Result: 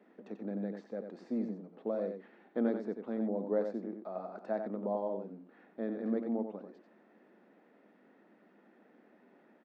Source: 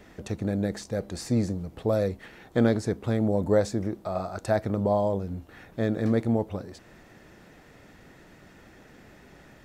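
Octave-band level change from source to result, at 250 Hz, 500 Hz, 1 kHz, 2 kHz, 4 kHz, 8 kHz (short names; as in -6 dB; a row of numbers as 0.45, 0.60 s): -8.5 dB, -9.0 dB, -10.5 dB, -14.5 dB, under -20 dB, under -30 dB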